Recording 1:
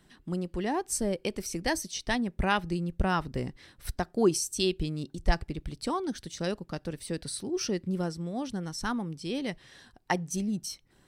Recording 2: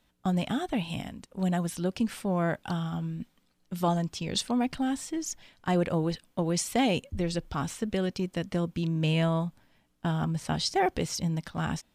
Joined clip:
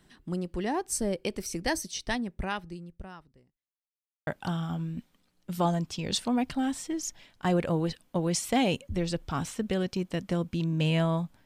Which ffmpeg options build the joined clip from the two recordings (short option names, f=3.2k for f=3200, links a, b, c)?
-filter_complex "[0:a]apad=whole_dur=11.45,atrim=end=11.45,asplit=2[a][b];[a]atrim=end=3.73,asetpts=PTS-STARTPTS,afade=t=out:st=1.97:d=1.76:c=qua[c];[b]atrim=start=3.73:end=4.27,asetpts=PTS-STARTPTS,volume=0[d];[1:a]atrim=start=2.5:end=9.68,asetpts=PTS-STARTPTS,afade=t=in:d=0.004:c=hsin[e];[c][d][e]concat=n=3:v=0:a=1"